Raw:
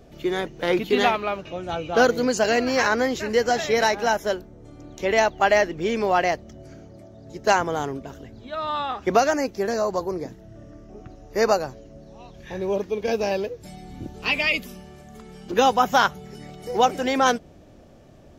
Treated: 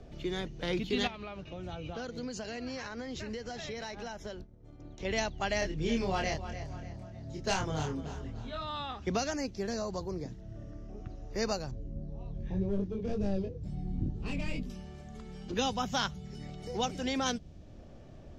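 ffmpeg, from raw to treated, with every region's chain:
ffmpeg -i in.wav -filter_complex "[0:a]asettb=1/sr,asplit=3[link_01][link_02][link_03];[link_01]atrim=end=1.074[link_04];[link_02]atrim=start=1.07:end=5.05,asetpts=PTS-STARTPTS,afade=type=in:duration=0.004:curve=qsin,afade=type=out:start_time=3.976:duration=0.004:curve=qsin,agate=range=-33dB:threshold=-38dB:ratio=3:release=100:detection=peak,acompressor=threshold=-30dB:ratio=3:attack=3.2:release=140:knee=1:detection=peak,highshelf=frequency=9500:gain=-8.5[link_05];[link_03]atrim=start=5.046[link_06];[link_04][link_05]acrossfade=duration=0.004:curve1=hsin:curve2=qsin[link_07];[link_07][link_06]acrossfade=duration=0.004:curve1=qsin:curve2=hsin,asettb=1/sr,asplit=3[link_08][link_09][link_10];[link_08]atrim=end=5.594[link_11];[link_09]atrim=start=5.59:end=8.63,asetpts=PTS-STARTPTS,afade=type=in:duration=0.004:curve=qsin,afade=type=out:start_time=3.036:duration=0.004:curve=qsin,asoftclip=type=hard:threshold=-10.5dB,asplit=2[link_12][link_13];[link_13]adelay=26,volume=-2.5dB[link_14];[link_12][link_14]amix=inputs=2:normalize=0,atrim=end_sample=134064,aecho=1:1:296|592|888:0.188|0.0603|0.0193,atrim=end_sample=134064[link_15];[link_10]atrim=start=8.626[link_16];[link_11][link_15]acrossfade=duration=0.004:curve1=hsin:curve2=qsin[link_17];[link_17][link_16]acrossfade=duration=0.004:curve1=qsin:curve2=hsin,asettb=1/sr,asplit=3[link_18][link_19][link_20];[link_18]atrim=end=11.714[link_21];[link_19]atrim=start=11.71:end=14.7,asetpts=PTS-STARTPTS,afade=type=in:duration=0.004:curve=qsin,afade=type=out:start_time=2.986:duration=0.004:curve=qsin,volume=21.5dB,asoftclip=hard,volume=-21.5dB,tiltshelf=frequency=750:gain=9.5,flanger=delay=19.5:depth=2.5:speed=2[link_22];[link_20]atrim=start=14.696[link_23];[link_21][link_22]acrossfade=duration=0.004:curve1=hsin:curve2=qsin[link_24];[link_24][link_23]acrossfade=duration=0.004:curve1=qsin:curve2=hsin,lowpass=6100,lowshelf=frequency=96:gain=8,acrossover=split=220|3000[link_25][link_26][link_27];[link_26]acompressor=threshold=-53dB:ratio=1.5[link_28];[link_25][link_28][link_27]amix=inputs=3:normalize=0,volume=-3dB" out.wav

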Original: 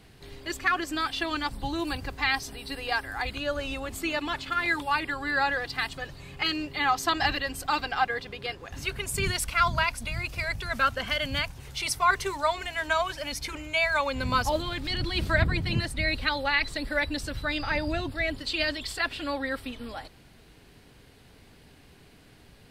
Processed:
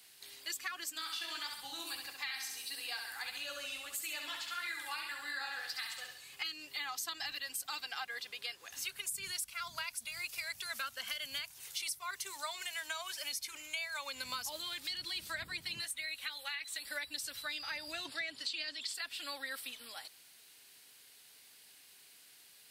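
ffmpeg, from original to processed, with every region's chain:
ffmpeg -i in.wav -filter_complex "[0:a]asettb=1/sr,asplit=3[link_01][link_02][link_03];[link_01]atrim=end=0.904[link_04];[link_02]atrim=start=0.9:end=6.33,asetpts=PTS-STARTPTS,afade=type=in:duration=0.004:curve=qsin,afade=type=out:start_time=5.426:duration=0.004:curve=qsin,flanger=delay=6.5:depth=9.9:regen=-35:speed=1.6:shape=triangular,aecho=1:1:66|132|198|264|330|396:0.531|0.26|0.127|0.0625|0.0306|0.015,atrim=end_sample=239463[link_05];[link_03]atrim=start=6.326[link_06];[link_04][link_05]acrossfade=duration=0.004:curve1=hsin:curve2=qsin[link_07];[link_07][link_06]acrossfade=duration=0.004:curve1=qsin:curve2=hsin,asettb=1/sr,asplit=3[link_08][link_09][link_10];[link_08]atrim=end=15.844[link_11];[link_09]atrim=start=15.84:end=16.85,asetpts=PTS-STARTPTS,afade=type=in:duration=0.004:curve=qsin,afade=type=out:start_time=1.006:duration=0.004:curve=qsin,equalizer=frequency=4800:width=4.2:gain=-11,acrossover=split=120|710|1700[link_12][link_13][link_14][link_15];[link_12]acompressor=threshold=-43dB:ratio=3[link_16];[link_13]acompressor=threshold=-49dB:ratio=3[link_17];[link_14]acompressor=threshold=-38dB:ratio=3[link_18];[link_15]acompressor=threshold=-30dB:ratio=3[link_19];[link_16][link_17][link_18][link_19]amix=inputs=4:normalize=0,asplit=2[link_20][link_21];[link_21]adelay=13,volume=-11.5dB[link_22];[link_20][link_22]amix=inputs=2:normalize=0,atrim=end_sample=44541[link_23];[link_10]atrim=start=16.846[link_24];[link_11][link_23]acrossfade=duration=0.004:curve1=hsin:curve2=qsin[link_25];[link_25][link_24]acrossfade=duration=0.004:curve1=qsin:curve2=hsin,asettb=1/sr,asplit=3[link_26][link_27][link_28];[link_26]atrim=end=18.054[link_29];[link_27]atrim=start=18.05:end=18.94,asetpts=PTS-STARTPTS,afade=type=in:duration=0.004:curve=qsin,afade=type=out:start_time=0.886:duration=0.004:curve=qsin,acontrast=31,highpass=130,lowpass=7200[link_30];[link_28]atrim=start=18.936[link_31];[link_29][link_30]acrossfade=duration=0.004:curve1=hsin:curve2=qsin[link_32];[link_32][link_31]acrossfade=duration=0.004:curve1=qsin:curve2=hsin,aderivative,acrossover=split=240[link_33][link_34];[link_34]acompressor=threshold=-42dB:ratio=10[link_35];[link_33][link_35]amix=inputs=2:normalize=0,volume=5.5dB" out.wav

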